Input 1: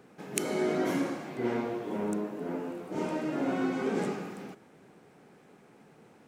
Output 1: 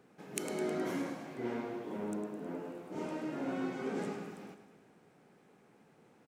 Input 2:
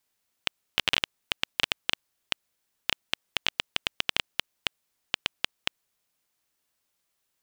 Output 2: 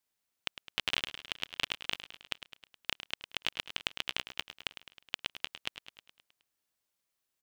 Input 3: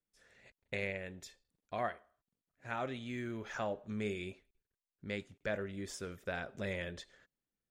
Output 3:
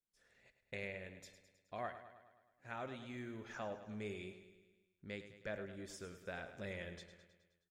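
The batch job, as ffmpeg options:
-af "aecho=1:1:105|210|315|420|525|630|735:0.266|0.157|0.0926|0.0546|0.0322|0.019|0.0112,volume=-7dB"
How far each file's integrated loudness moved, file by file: −6.5, −6.5, −7.0 LU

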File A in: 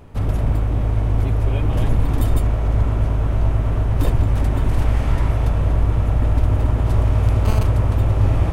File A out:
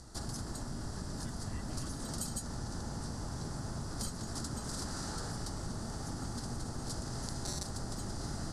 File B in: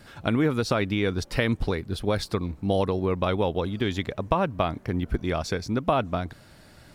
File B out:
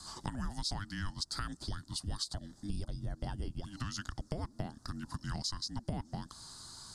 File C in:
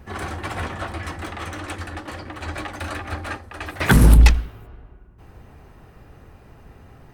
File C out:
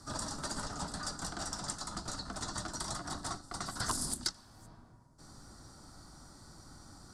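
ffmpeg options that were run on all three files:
-af "highpass=frequency=290:width=0.5412,highpass=frequency=290:width=1.3066,equalizer=frequency=300:width_type=q:width=4:gain=-5,equalizer=frequency=500:width_type=q:width=4:gain=4,equalizer=frequency=980:width_type=q:width=4:gain=-7,equalizer=frequency=1900:width_type=q:width=4:gain=4,equalizer=frequency=2800:width_type=q:width=4:gain=-10,equalizer=frequency=5200:width_type=q:width=4:gain=7,lowpass=frequency=9800:width=0.5412,lowpass=frequency=9800:width=1.3066,aexciter=amount=13.9:drive=4:freq=4900,afreqshift=-500,highshelf=frequency=3100:gain=-11,acompressor=threshold=-37dB:ratio=3,volume=-1dB"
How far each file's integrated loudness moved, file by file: −20.5, −14.0, −16.5 LU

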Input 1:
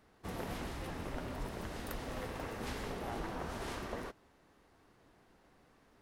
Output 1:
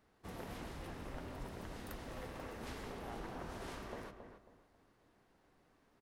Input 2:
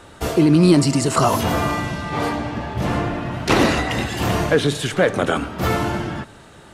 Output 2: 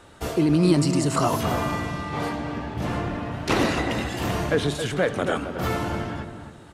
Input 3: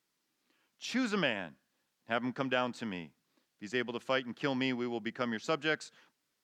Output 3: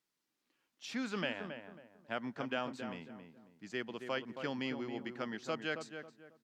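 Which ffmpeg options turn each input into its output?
-filter_complex "[0:a]asplit=2[link_01][link_02];[link_02]adelay=272,lowpass=frequency=1500:poles=1,volume=-7dB,asplit=2[link_03][link_04];[link_04]adelay=272,lowpass=frequency=1500:poles=1,volume=0.32,asplit=2[link_05][link_06];[link_06]adelay=272,lowpass=frequency=1500:poles=1,volume=0.32,asplit=2[link_07][link_08];[link_08]adelay=272,lowpass=frequency=1500:poles=1,volume=0.32[link_09];[link_01][link_03][link_05][link_07][link_09]amix=inputs=5:normalize=0,volume=-6dB"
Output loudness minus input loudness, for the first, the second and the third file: −5.5, −5.0, −6.0 LU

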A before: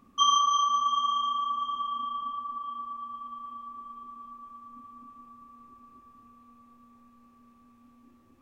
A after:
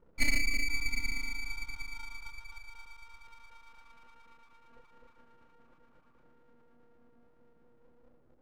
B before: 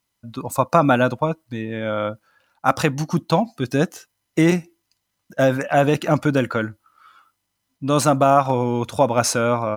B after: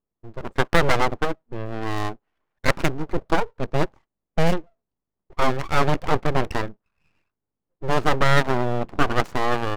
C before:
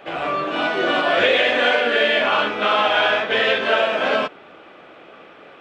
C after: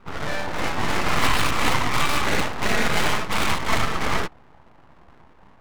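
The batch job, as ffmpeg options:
-af "adynamicsmooth=sensitivity=1:basefreq=540,aeval=exprs='abs(val(0))':channel_layout=same"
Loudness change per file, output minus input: −7.0, −4.0, −5.5 LU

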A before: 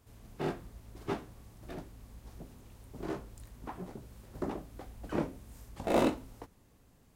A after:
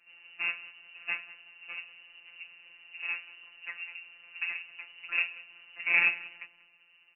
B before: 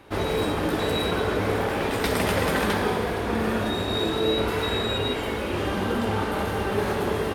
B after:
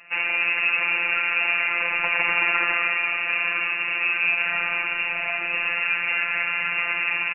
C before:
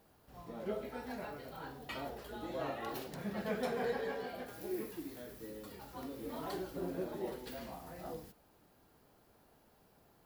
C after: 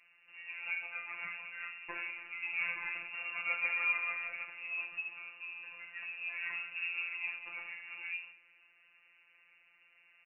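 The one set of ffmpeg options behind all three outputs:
-filter_complex "[0:a]lowpass=frequency=2500:width_type=q:width=0.5098,lowpass=frequency=2500:width_type=q:width=0.6013,lowpass=frequency=2500:width_type=q:width=0.9,lowpass=frequency=2500:width_type=q:width=2.563,afreqshift=-2900,asplit=2[link_01][link_02];[link_02]adelay=188,lowpass=frequency=1600:poles=1,volume=-16dB,asplit=2[link_03][link_04];[link_04]adelay=188,lowpass=frequency=1600:poles=1,volume=0.42,asplit=2[link_05][link_06];[link_06]adelay=188,lowpass=frequency=1600:poles=1,volume=0.42,asplit=2[link_07][link_08];[link_08]adelay=188,lowpass=frequency=1600:poles=1,volume=0.42[link_09];[link_01][link_03][link_05][link_07][link_09]amix=inputs=5:normalize=0,afftfilt=real='hypot(re,im)*cos(PI*b)':imag='0':win_size=1024:overlap=0.75,volume=5.5dB"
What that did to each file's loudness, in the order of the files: +6.0, +4.0, +5.0 LU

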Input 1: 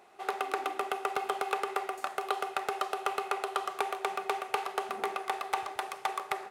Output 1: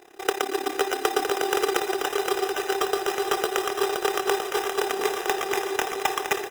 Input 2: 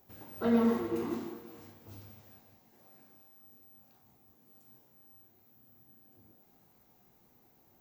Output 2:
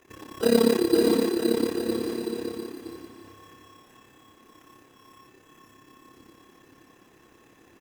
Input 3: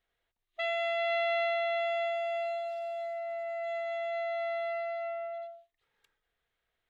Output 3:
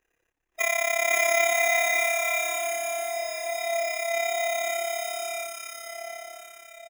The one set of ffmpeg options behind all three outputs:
-filter_complex "[0:a]superequalizer=6b=3.16:7b=2.51:11b=2.51:12b=0.355:15b=2.24,acontrast=79,tremolo=f=34:d=0.857,acrusher=samples=10:mix=1:aa=0.000001,asplit=2[link_01][link_02];[link_02]aecho=0:1:520|962|1338|1657|1928:0.631|0.398|0.251|0.158|0.1[link_03];[link_01][link_03]amix=inputs=2:normalize=0"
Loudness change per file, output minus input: +8.5, +7.5, +8.0 LU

